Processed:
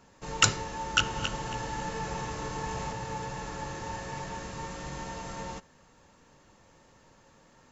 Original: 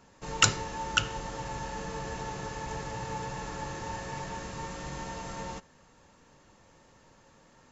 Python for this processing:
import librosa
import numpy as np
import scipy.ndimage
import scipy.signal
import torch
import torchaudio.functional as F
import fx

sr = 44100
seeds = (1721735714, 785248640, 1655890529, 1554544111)

y = fx.reverse_delay_fb(x, sr, ms=137, feedback_pct=48, wet_db=-2.5, at=(0.85, 2.93))